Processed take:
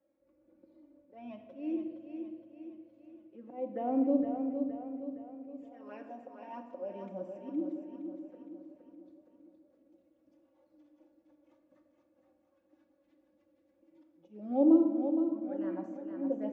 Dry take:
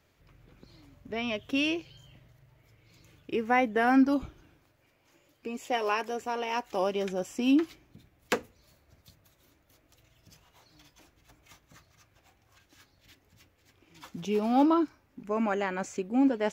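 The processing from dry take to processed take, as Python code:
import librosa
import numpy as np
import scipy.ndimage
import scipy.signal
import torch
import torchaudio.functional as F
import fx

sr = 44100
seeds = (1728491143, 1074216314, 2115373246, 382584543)

p1 = fx.env_flanger(x, sr, rest_ms=3.7, full_db=-22.0)
p2 = fx.auto_swell(p1, sr, attack_ms=244.0)
p3 = fx.double_bandpass(p2, sr, hz=410.0, octaves=0.78)
p4 = p3 + fx.echo_feedback(p3, sr, ms=466, feedback_pct=50, wet_db=-6.5, dry=0)
p5 = fx.room_shoebox(p4, sr, seeds[0], volume_m3=1300.0, walls='mixed', distance_m=1.0)
y = F.gain(torch.from_numpy(p5), 3.0).numpy()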